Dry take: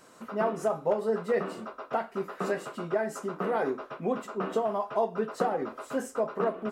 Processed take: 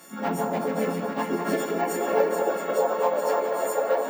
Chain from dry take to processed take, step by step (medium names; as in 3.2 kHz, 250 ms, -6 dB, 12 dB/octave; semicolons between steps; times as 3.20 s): partials quantised in pitch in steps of 4 st; bass shelf 350 Hz +7 dB; gain riding within 5 dB 2 s; wavefolder -16 dBFS; harmony voices +3 st -3 dB, +5 st -8 dB; chorus voices 2, 0.94 Hz, delay 22 ms, depth 3 ms; plain phase-vocoder stretch 0.61×; high-pass sweep 170 Hz -> 530 Hz, 0.63–2.35 s; echo whose repeats swap between lows and highs 214 ms, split 1.3 kHz, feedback 81%, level -4.5 dB; on a send at -8 dB: reverberation RT60 1.7 s, pre-delay 18 ms; on the sum: careless resampling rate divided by 2×, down filtered, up hold